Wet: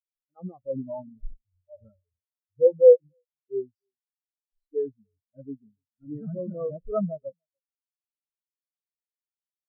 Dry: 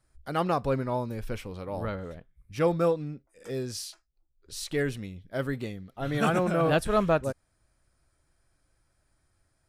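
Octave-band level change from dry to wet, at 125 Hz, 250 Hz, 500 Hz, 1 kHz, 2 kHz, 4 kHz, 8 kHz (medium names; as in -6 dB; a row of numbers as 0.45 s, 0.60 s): -9.5 dB, -6.5 dB, +5.5 dB, under -15 dB, under -40 dB, under -40 dB, under -35 dB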